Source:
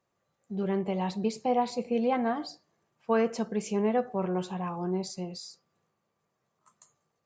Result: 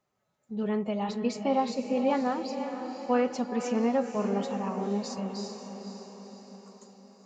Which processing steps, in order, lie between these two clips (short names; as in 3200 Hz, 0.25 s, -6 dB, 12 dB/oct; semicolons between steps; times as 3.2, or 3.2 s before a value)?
formant-preserving pitch shift +1.5 st; diffused feedback echo 0.507 s, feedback 55%, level -8 dB